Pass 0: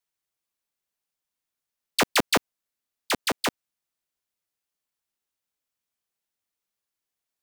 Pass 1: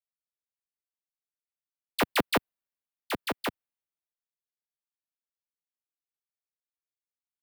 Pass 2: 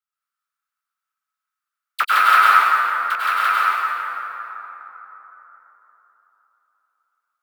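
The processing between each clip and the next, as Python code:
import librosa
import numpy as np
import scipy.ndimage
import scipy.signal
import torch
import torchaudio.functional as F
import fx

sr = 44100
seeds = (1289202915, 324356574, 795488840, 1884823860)

y1 = fx.peak_eq(x, sr, hz=6600.0, db=-13.0, octaves=0.98)
y1 = fx.band_widen(y1, sr, depth_pct=40)
y1 = y1 * 10.0 ** (-4.0 / 20.0)
y2 = fx.rattle_buzz(y1, sr, strikes_db=-41.0, level_db=-17.0)
y2 = fx.highpass_res(y2, sr, hz=1300.0, q=10.0)
y2 = fx.rev_plate(y2, sr, seeds[0], rt60_s=3.9, hf_ratio=0.45, predelay_ms=85, drr_db=-9.0)
y2 = y2 * 10.0 ** (-1.5 / 20.0)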